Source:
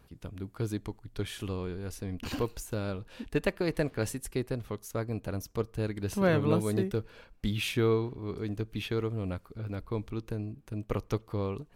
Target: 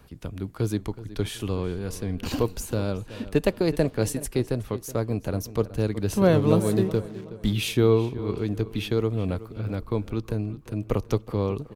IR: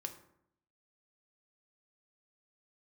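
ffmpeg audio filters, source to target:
-filter_complex "[0:a]acrossover=split=130|1200|2700[link_01][link_02][link_03][link_04];[link_03]acompressor=threshold=-55dB:ratio=6[link_05];[link_01][link_02][link_05][link_04]amix=inputs=4:normalize=0,asettb=1/sr,asplit=3[link_06][link_07][link_08];[link_06]atrim=end=6.334[link_09];[link_07]atrim=start=6.33:end=7.53,asetpts=PTS-STARTPTS,afade=type=in:duration=0.004:curve=qsin,afade=type=out:start_time=1.196:duration=0.004:curve=qsin,aeval=exprs='sgn(val(0))*max(abs(val(0))-0.00282,0)':channel_layout=same[link_10];[link_08]atrim=start=7.526[link_11];[link_09][link_10]acrossfade=duration=0.004:curve1=hsin:curve2=qsin[link_12];[link_12][link_11]acrossfade=duration=0.004:curve1=qsin:curve2=hsin,asplit=2[link_13][link_14];[link_14]adelay=372,lowpass=frequency=4000:poles=1,volume=-15.5dB,asplit=2[link_15][link_16];[link_16]adelay=372,lowpass=frequency=4000:poles=1,volume=0.37,asplit=2[link_17][link_18];[link_18]adelay=372,lowpass=frequency=4000:poles=1,volume=0.37[link_19];[link_13][link_15][link_17][link_19]amix=inputs=4:normalize=0,volume=7dB"

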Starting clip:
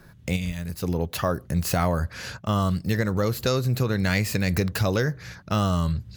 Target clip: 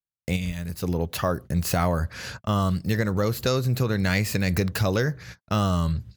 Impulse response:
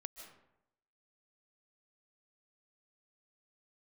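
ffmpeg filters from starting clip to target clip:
-af "agate=range=-56dB:threshold=-38dB:ratio=16:detection=peak"

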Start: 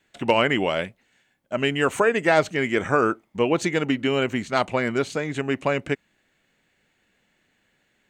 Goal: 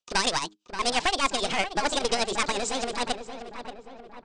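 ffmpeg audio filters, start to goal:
ffmpeg -i in.wav -filter_complex "[0:a]agate=range=-29dB:threshold=-44dB:ratio=16:detection=peak,bandreject=frequency=60:width_type=h:width=6,bandreject=frequency=120:width_type=h:width=6,bandreject=frequency=180:width_type=h:width=6,bandreject=frequency=240:width_type=h:width=6,acompressor=threshold=-32dB:ratio=1.5,aresample=11025,aeval=exprs='clip(val(0),-1,0.0211)':channel_layout=same,aresample=44100,tremolo=f=5.9:d=0.62,aeval=exprs='0.178*(cos(1*acos(clip(val(0)/0.178,-1,1)))-cos(1*PI/2))+0.00126*(cos(2*acos(clip(val(0)/0.178,-1,1)))-cos(2*PI/2))+0.00224*(cos(4*acos(clip(val(0)/0.178,-1,1)))-cos(4*PI/2))+0.00126*(cos(6*acos(clip(val(0)/0.178,-1,1)))-cos(6*PI/2))':channel_layout=same,crystalizer=i=4:c=0,atempo=1.1,asplit=2[link_01][link_02];[link_02]adelay=1006,lowpass=frequency=1300:poles=1,volume=-9.5dB,asplit=2[link_03][link_04];[link_04]adelay=1006,lowpass=frequency=1300:poles=1,volume=0.54,asplit=2[link_05][link_06];[link_06]adelay=1006,lowpass=frequency=1300:poles=1,volume=0.54,asplit=2[link_07][link_08];[link_08]adelay=1006,lowpass=frequency=1300:poles=1,volume=0.54,asplit=2[link_09][link_10];[link_10]adelay=1006,lowpass=frequency=1300:poles=1,volume=0.54,asplit=2[link_11][link_12];[link_12]adelay=1006,lowpass=frequency=1300:poles=1,volume=0.54[link_13];[link_03][link_05][link_07][link_09][link_11][link_13]amix=inputs=6:normalize=0[link_14];[link_01][link_14]amix=inputs=2:normalize=0,asetrate=76440,aresample=44100,volume=5dB" out.wav

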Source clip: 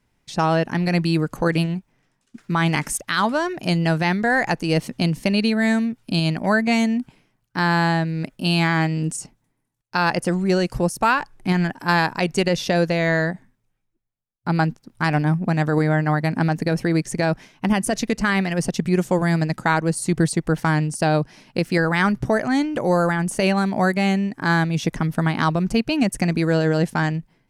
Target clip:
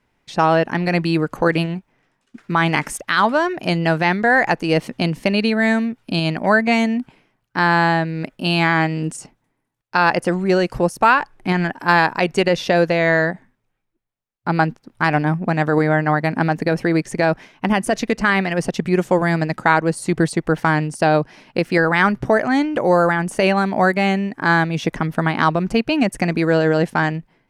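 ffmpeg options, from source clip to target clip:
ffmpeg -i in.wav -af "bass=frequency=250:gain=-7,treble=frequency=4000:gain=-9,volume=5dB" out.wav

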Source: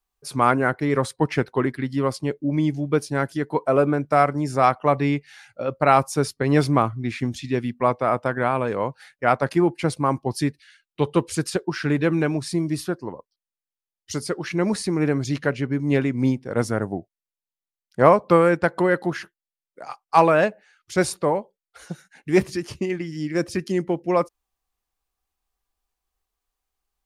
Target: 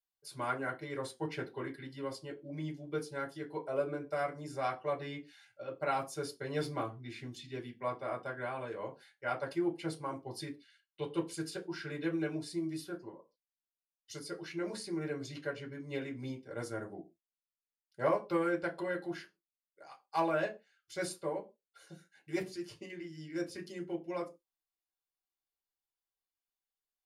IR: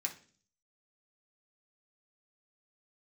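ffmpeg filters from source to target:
-filter_complex "[1:a]atrim=start_sample=2205,afade=type=out:start_time=0.35:duration=0.01,atrim=end_sample=15876,asetrate=83790,aresample=44100[link_01];[0:a][link_01]afir=irnorm=-1:irlink=0,volume=-8dB"

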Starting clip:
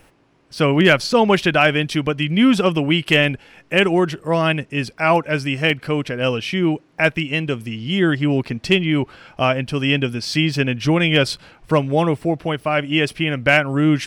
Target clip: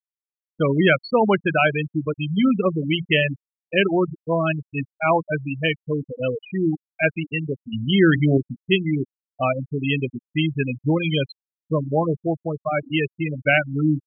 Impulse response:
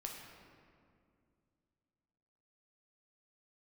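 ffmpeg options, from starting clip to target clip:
-filter_complex "[0:a]adynamicequalizer=threshold=0.0316:dfrequency=280:dqfactor=4.1:tfrequency=280:tqfactor=4.1:attack=5:release=100:ratio=0.375:range=2:mode=cutabove:tftype=bell,bandreject=frequency=58.09:width_type=h:width=4,bandreject=frequency=116.18:width_type=h:width=4,bandreject=frequency=174.27:width_type=h:width=4,bandreject=frequency=232.36:width_type=h:width=4,bandreject=frequency=290.45:width_type=h:width=4,asettb=1/sr,asplit=3[link_01][link_02][link_03];[link_01]atrim=end=7.714[link_04];[link_02]atrim=start=7.71:end=8.38,asetpts=PTS-STARTPTS,afade=type=in:duration=0.004:curve=qsin,afade=type=out:start_time=0.666:duration=0.004:curve=qsin,acontrast=42[link_05];[link_03]atrim=start=8.376[link_06];[link_04][link_05]acrossfade=duration=0.004:curve1=hsin:curve2=qsin[link_07];[link_07][link_06]acrossfade=duration=0.004:curve1=qsin:curve2=hsin,asettb=1/sr,asplit=3[link_08][link_09][link_10];[link_08]atrim=end=11.014[link_11];[link_09]atrim=start=11.01:end=11.88,asetpts=PTS-STARTPTS,afade=type=in:duration=0.004:curve=qsin,afade=type=out:start_time=0.866:duration=0.004:curve=qsin,equalizer=frequency=1000:width_type=o:width=2.3:gain=-5.5[link_12];[link_10]atrim=start=11.876[link_13];[link_11][link_12]acrossfade=duration=0.004:curve1=hsin:curve2=qsin[link_14];[link_14][link_13]acrossfade=duration=0.004:curve1=qsin:curve2=hsin,afftfilt=real='re*gte(hypot(re,im),0.355)':imag='im*gte(hypot(re,im),0.355)':win_size=1024:overlap=0.75,volume=-2.5dB"

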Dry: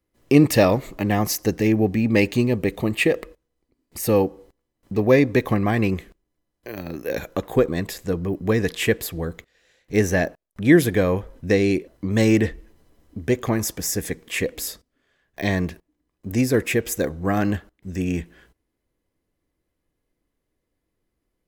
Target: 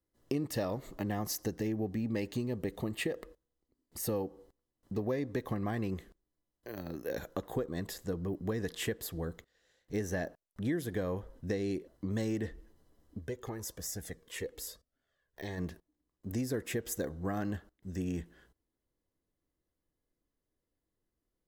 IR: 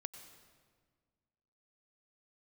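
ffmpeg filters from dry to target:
-filter_complex "[0:a]equalizer=frequency=2400:width_type=o:width=0.34:gain=-10,acompressor=threshold=-22dB:ratio=5,asplit=3[link_01][link_02][link_03];[link_01]afade=type=out:start_time=13.18:duration=0.02[link_04];[link_02]flanger=delay=1.3:depth=1.1:regen=28:speed=1:shape=triangular,afade=type=in:start_time=13.18:duration=0.02,afade=type=out:start_time=15.57:duration=0.02[link_05];[link_03]afade=type=in:start_time=15.57:duration=0.02[link_06];[link_04][link_05][link_06]amix=inputs=3:normalize=0,volume=-9dB"

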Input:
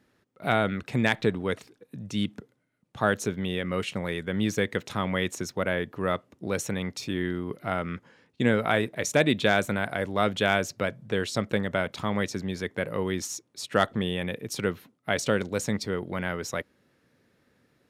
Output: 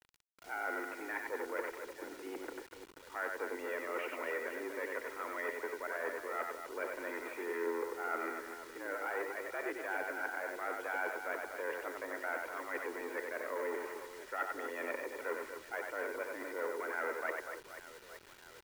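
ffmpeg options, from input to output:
ffmpeg -i in.wav -filter_complex "[0:a]aeval=exprs='0.398*(cos(1*acos(clip(val(0)/0.398,-1,1)))-cos(1*PI/2))+0.0398*(cos(6*acos(clip(val(0)/0.398,-1,1)))-cos(6*PI/2))+0.0178*(cos(7*acos(clip(val(0)/0.398,-1,1)))-cos(7*PI/2))+0.0178*(cos(8*acos(clip(val(0)/0.398,-1,1)))-cos(8*PI/2))':channel_layout=same,areverse,acompressor=threshold=-35dB:ratio=16,areverse,aeval=exprs='(tanh(79.4*val(0)+0.55)-tanh(0.55))/79.4':channel_layout=same,aeval=exprs='val(0)+0.000355*(sin(2*PI*60*n/s)+sin(2*PI*2*60*n/s)/2+sin(2*PI*3*60*n/s)/3+sin(2*PI*4*60*n/s)/4+sin(2*PI*5*60*n/s)/5)':channel_layout=same,asplit=2[link_01][link_02];[link_02]aecho=0:1:90|234|464.4|833|1423:0.631|0.398|0.251|0.158|0.1[link_03];[link_01][link_03]amix=inputs=2:normalize=0,asetrate=42336,aresample=44100,highpass=frequency=290:width_type=q:width=0.5412,highpass=frequency=290:width_type=q:width=1.307,lowpass=frequency=2100:width_type=q:width=0.5176,lowpass=frequency=2100:width_type=q:width=0.7071,lowpass=frequency=2100:width_type=q:width=1.932,afreqshift=80,acrusher=bits=10:mix=0:aa=0.000001,equalizer=frequency=550:width=1.9:gain=-8.5,aecho=1:1:2.1:0.31,volume=12dB" out.wav

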